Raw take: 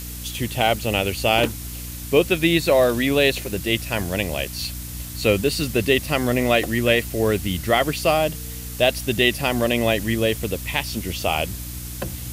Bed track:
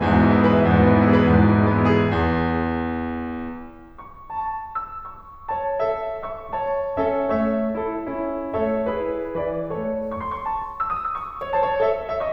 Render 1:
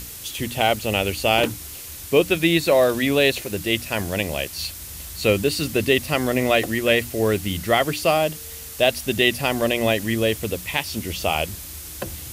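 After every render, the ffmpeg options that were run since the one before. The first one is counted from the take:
-af "bandreject=f=60:t=h:w=6,bandreject=f=120:t=h:w=6,bandreject=f=180:t=h:w=6,bandreject=f=240:t=h:w=6,bandreject=f=300:t=h:w=6"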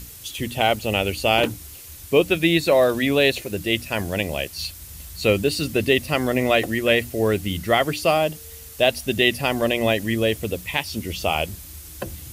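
-af "afftdn=nr=6:nf=-37"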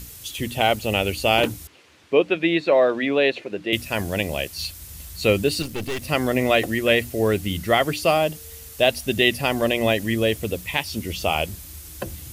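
-filter_complex "[0:a]asettb=1/sr,asplit=3[a][b][c];[a]atrim=end=1.674[d];[b]atrim=start=1.67:end=3.73,asetpts=PTS-STARTPTS,afade=t=in:d=0.004:c=qsin,afade=t=out:st=2.056:d=0.004:c=qsin,highpass=250,lowpass=2.7k[e];[c]atrim=start=3.726[f];[d][e]acrossfade=d=0.004:c1=hsin:c2=qsin[g];[g][f]acrossfade=d=0.004:c1=qsin:c2=hsin,asettb=1/sr,asplit=3[h][i][j];[h]atrim=end=5.624[k];[i]atrim=start=5.62:end=6.02,asetpts=PTS-STARTPTS,afade=t=in:d=0.004:c=qsin,afade=t=out:st=0.396:d=0.004:c=qsin,aeval=exprs='(tanh(17.8*val(0)+0.7)-tanh(0.7))/17.8':c=same[l];[j]atrim=start=6.016[m];[k][l]acrossfade=d=0.004:c1=hsin:c2=qsin[n];[n][m]acrossfade=d=0.004:c1=qsin:c2=hsin"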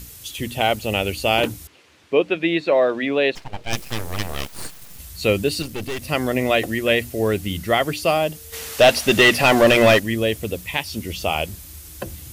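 -filter_complex "[0:a]asettb=1/sr,asplit=3[a][b][c];[a]atrim=end=3.354[d];[b]atrim=start=3.35:end=4.99,asetpts=PTS-STARTPTS,afade=t=in:d=0.004:c=qsin,afade=t=out:st=1.636:d=0.004:c=qsin,aeval=exprs='abs(val(0))':c=same[e];[c]atrim=start=4.986[f];[d][e]acrossfade=d=0.004:c1=hsin:c2=qsin[g];[g][f]acrossfade=d=0.004:c1=qsin:c2=hsin,asplit=3[h][i][j];[h]afade=t=out:st=8.52:d=0.02[k];[i]asplit=2[l][m];[m]highpass=f=720:p=1,volume=24dB,asoftclip=type=tanh:threshold=-3dB[n];[l][n]amix=inputs=2:normalize=0,lowpass=f=2.7k:p=1,volume=-6dB,afade=t=in:st=8.52:d=0.02,afade=t=out:st=9.98:d=0.02[o];[j]afade=t=in:st=9.98:d=0.02[p];[k][o][p]amix=inputs=3:normalize=0"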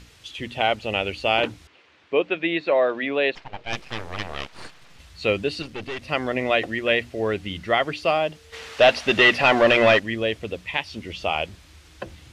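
-af "lowpass=3.4k,lowshelf=f=390:g=-8.5"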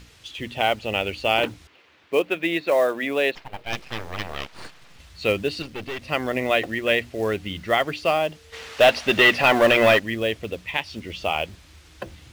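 -af "acrusher=bits=6:mode=log:mix=0:aa=0.000001"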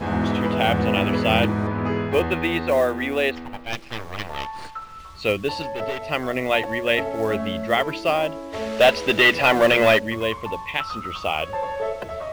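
-filter_complex "[1:a]volume=-6.5dB[a];[0:a][a]amix=inputs=2:normalize=0"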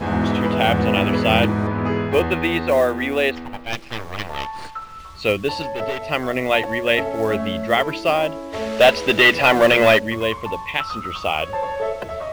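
-af "volume=2.5dB"

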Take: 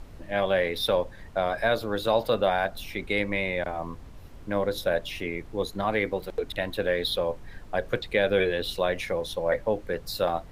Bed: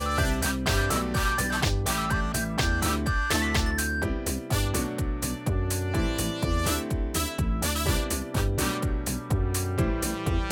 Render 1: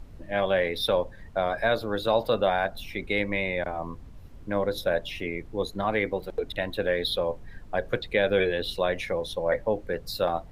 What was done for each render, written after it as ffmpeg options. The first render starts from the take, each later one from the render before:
-af "afftdn=nr=6:nf=-45"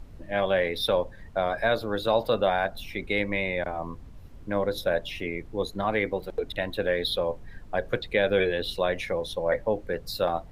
-af anull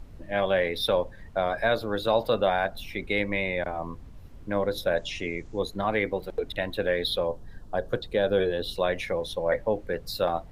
-filter_complex "[0:a]asettb=1/sr,asplit=3[a][b][c];[a]atrim=end=4.974[d];[b]atrim=start=4.97:end=5.59,asetpts=PTS-STARTPTS,afade=t=in:d=0.004:c=qsin,afade=t=out:st=0.616:d=0.004:c=qsin,lowpass=f=6.8k:t=q:w=3.5[e];[c]atrim=start=5.586[f];[d][e]acrossfade=d=0.004:c1=hsin:c2=qsin[g];[g][f]acrossfade=d=0.004:c1=qsin:c2=hsin,asettb=1/sr,asplit=3[h][i][j];[h]atrim=end=7.274[k];[i]atrim=start=7.27:end=8.76,asetpts=PTS-STARTPTS,afade=t=in:d=0.004:c=qsin,afade=t=out:st=1.486:d=0.004:c=qsin,equalizer=f=2.2k:t=o:w=0.6:g=-13.5[l];[j]atrim=start=8.756[m];[k][l]acrossfade=d=0.004:c1=hsin:c2=qsin[n];[n][m]acrossfade=d=0.004:c1=qsin:c2=hsin"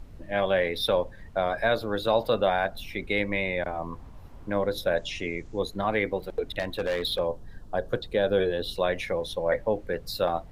-filter_complex "[0:a]asettb=1/sr,asplit=3[a][b][c];[a]atrim=end=3.924[d];[b]atrim=start=3.92:end=4.5,asetpts=PTS-STARTPTS,afade=t=in:d=0.004:c=qsin,afade=t=out:st=0.576:d=0.004:c=qsin,equalizer=f=910:w=1.1:g=9[e];[c]atrim=start=4.496[f];[d][e]acrossfade=d=0.004:c1=hsin:c2=qsin[g];[g][f]acrossfade=d=0.004:c1=qsin:c2=hsin,asettb=1/sr,asplit=3[h][i][j];[h]atrim=end=6.594[k];[i]atrim=start=6.59:end=7.19,asetpts=PTS-STARTPTS,afade=t=in:d=0.004:c=qsin,afade=t=out:st=0.596:d=0.004:c=qsin,asoftclip=type=hard:threshold=-23dB[l];[j]atrim=start=7.186[m];[k][l]acrossfade=d=0.004:c1=hsin:c2=qsin[n];[n][m]acrossfade=d=0.004:c1=qsin:c2=hsin"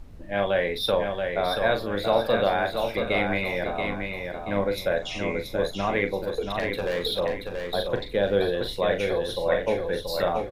-filter_complex "[0:a]asplit=2[a][b];[b]adelay=40,volume=-8dB[c];[a][c]amix=inputs=2:normalize=0,aecho=1:1:680|1360|2040|2720|3400:0.562|0.208|0.077|0.0285|0.0105"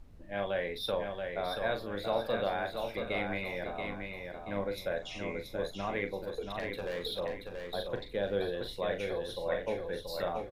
-af "volume=-9.5dB"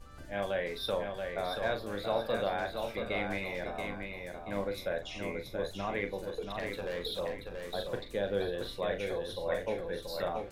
-filter_complex "[1:a]volume=-28.5dB[a];[0:a][a]amix=inputs=2:normalize=0"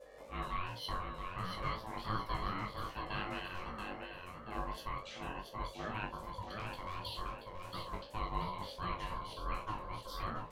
-af "aeval=exprs='val(0)*sin(2*PI*540*n/s)':c=same,flanger=delay=17:depth=4.6:speed=2.7"

